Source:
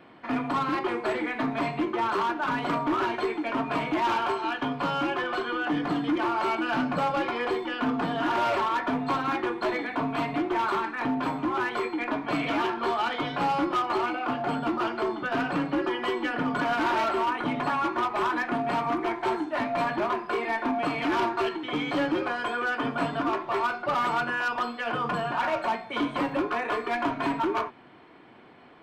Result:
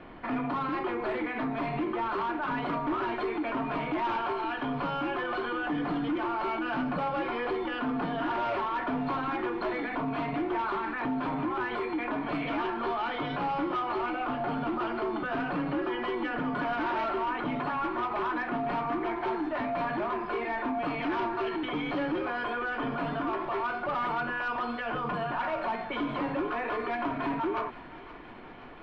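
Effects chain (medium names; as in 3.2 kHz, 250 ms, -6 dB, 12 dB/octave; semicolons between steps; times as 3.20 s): peak limiter -29 dBFS, peak gain reduction 10.5 dB; added noise brown -60 dBFS; distance through air 220 m; on a send: thinning echo 523 ms, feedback 83%, high-pass 1 kHz, level -16 dB; on the sum: trim +5 dB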